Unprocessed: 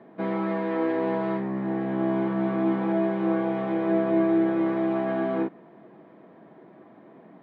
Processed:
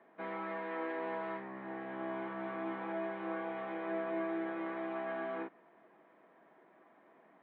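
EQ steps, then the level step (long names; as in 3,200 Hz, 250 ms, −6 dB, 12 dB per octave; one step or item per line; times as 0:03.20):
resonant band-pass 2,300 Hz, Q 0.65
high-frequency loss of the air 240 metres
−3.0 dB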